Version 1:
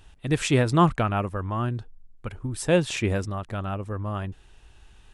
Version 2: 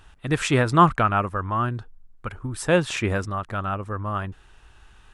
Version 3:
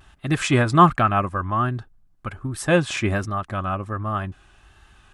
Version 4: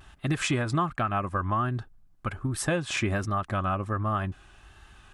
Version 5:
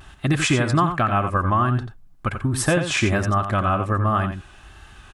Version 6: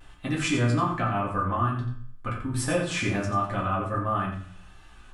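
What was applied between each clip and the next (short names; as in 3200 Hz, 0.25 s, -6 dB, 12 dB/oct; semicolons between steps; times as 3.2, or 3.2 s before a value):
bell 1300 Hz +8.5 dB 1.1 oct
notch comb 470 Hz; vibrato 1.3 Hz 51 cents; gain +2.5 dB
compressor 12:1, threshold -23 dBFS, peak gain reduction 16 dB
echo 88 ms -8.5 dB; gain +7 dB
resonator 60 Hz, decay 0.71 s, harmonics all, mix 60%; reverb RT60 0.30 s, pre-delay 4 ms, DRR -2.5 dB; gain -5 dB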